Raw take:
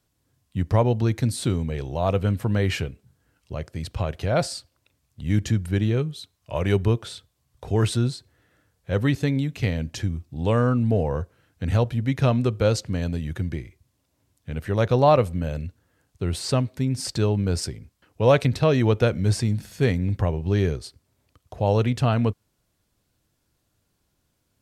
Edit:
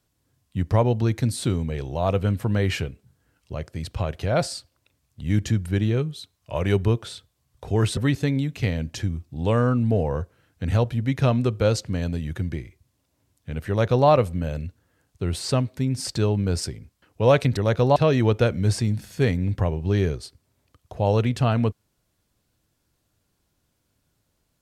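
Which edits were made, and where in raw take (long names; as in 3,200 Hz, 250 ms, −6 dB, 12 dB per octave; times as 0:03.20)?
0:07.97–0:08.97: remove
0:14.69–0:15.08: duplicate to 0:18.57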